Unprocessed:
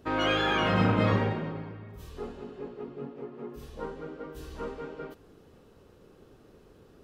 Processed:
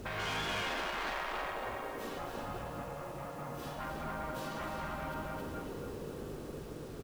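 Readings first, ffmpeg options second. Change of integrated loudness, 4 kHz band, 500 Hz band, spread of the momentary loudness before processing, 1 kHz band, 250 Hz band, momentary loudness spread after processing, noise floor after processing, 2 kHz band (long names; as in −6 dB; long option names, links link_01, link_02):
−9.0 dB, −6.0 dB, −7.5 dB, 18 LU, −4.5 dB, −11.0 dB, 8 LU, −45 dBFS, −5.0 dB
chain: -filter_complex "[0:a]aeval=exprs='0.251*sin(PI/2*2.51*val(0)/0.251)':channel_layout=same,lowshelf=frequency=140:gain=-3.5,dynaudnorm=framelen=200:gausssize=13:maxgain=4dB,aeval=exprs='val(0)+0.00355*(sin(2*PI*50*n/s)+sin(2*PI*2*50*n/s)/2+sin(2*PI*3*50*n/s)/3+sin(2*PI*4*50*n/s)/4+sin(2*PI*5*50*n/s)/5)':channel_layout=same,aecho=1:1:273|546|819|1092:0.631|0.202|0.0646|0.0207,asoftclip=type=tanh:threshold=-18.5dB,acompressor=threshold=-28dB:ratio=4,highshelf=frequency=2200:gain=-7,asplit=2[link_01][link_02];[link_02]adelay=47,volume=-10dB[link_03];[link_01][link_03]amix=inputs=2:normalize=0,afftfilt=real='re*lt(hypot(re,im),0.1)':imag='im*lt(hypot(re,im),0.1)':win_size=1024:overlap=0.75,acrusher=bits=8:mix=0:aa=0.000001,volume=-2dB"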